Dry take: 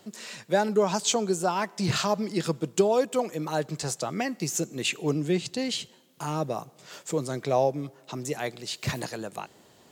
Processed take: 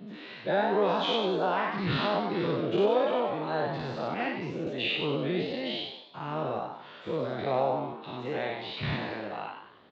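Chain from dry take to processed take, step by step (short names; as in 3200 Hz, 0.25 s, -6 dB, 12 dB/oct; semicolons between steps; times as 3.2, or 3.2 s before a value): spectral dilation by 0.12 s; elliptic low-pass 3700 Hz, stop band 80 dB; wow and flutter 26 cents; frequency-shifting echo 94 ms, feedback 44%, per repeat +91 Hz, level -5.5 dB; 4.14–4.67 three-band expander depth 100%; gain -7 dB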